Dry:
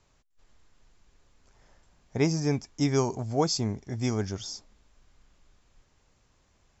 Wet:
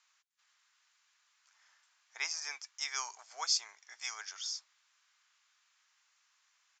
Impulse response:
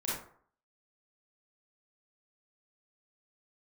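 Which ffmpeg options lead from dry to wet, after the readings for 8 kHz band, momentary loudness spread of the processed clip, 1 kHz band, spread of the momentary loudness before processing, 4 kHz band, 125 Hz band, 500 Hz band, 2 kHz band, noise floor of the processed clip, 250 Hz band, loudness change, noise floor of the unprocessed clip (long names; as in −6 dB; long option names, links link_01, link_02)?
can't be measured, 11 LU, −9.5 dB, 11 LU, 0.0 dB, below −40 dB, −31.5 dB, 0.0 dB, −74 dBFS, below −40 dB, −8.0 dB, −68 dBFS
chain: -af "highpass=frequency=1200:width=0.5412,highpass=frequency=1200:width=1.3066,aresample=16000,aresample=44100"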